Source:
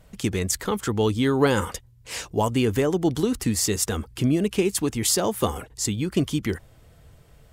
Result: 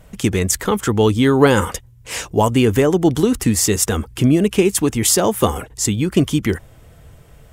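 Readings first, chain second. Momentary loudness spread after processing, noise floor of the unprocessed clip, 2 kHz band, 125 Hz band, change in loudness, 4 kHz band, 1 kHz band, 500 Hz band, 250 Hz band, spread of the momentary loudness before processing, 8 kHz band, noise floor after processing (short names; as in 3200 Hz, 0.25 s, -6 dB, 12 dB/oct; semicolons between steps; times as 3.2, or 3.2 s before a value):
7 LU, -53 dBFS, +7.5 dB, +7.5 dB, +7.5 dB, +5.5 dB, +7.5 dB, +7.5 dB, +7.5 dB, 7 LU, +7.0 dB, -46 dBFS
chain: bell 4400 Hz -5 dB 0.48 oct; gain +7.5 dB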